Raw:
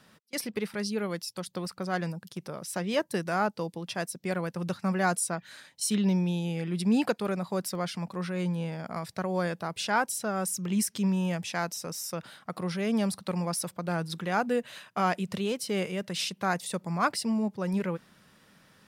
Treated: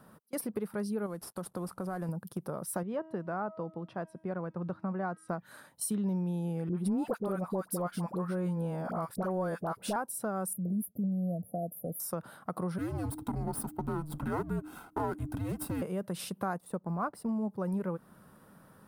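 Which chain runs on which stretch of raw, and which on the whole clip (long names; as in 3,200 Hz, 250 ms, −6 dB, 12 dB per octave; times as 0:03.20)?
0:01.06–0:02.09: variable-slope delta modulation 64 kbit/s + downward compressor 2.5 to 1, threshold −38 dBFS
0:02.83–0:05.29: low-pass filter 3,000 Hz + tuned comb filter 320 Hz, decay 0.99 s, mix 50%
0:06.69–0:09.96: high-pass filter 140 Hz + leveller curve on the samples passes 1 + all-pass dispersion highs, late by 62 ms, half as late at 940 Hz
0:10.53–0:12.00: downward expander −43 dBFS + linear-phase brick-wall band-stop 760–9,900 Hz + parametric band 380 Hz −11.5 dB 0.21 octaves
0:12.78–0:15.82: lower of the sound and its delayed copy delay 1.7 ms + frequency shifter −310 Hz
0:16.58–0:17.29: mu-law and A-law mismatch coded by A + high-shelf EQ 2,300 Hz −10 dB
whole clip: flat-topped bell 3,700 Hz −15.5 dB 2.3 octaves; downward compressor 3 to 1, threshold −37 dBFS; level +4 dB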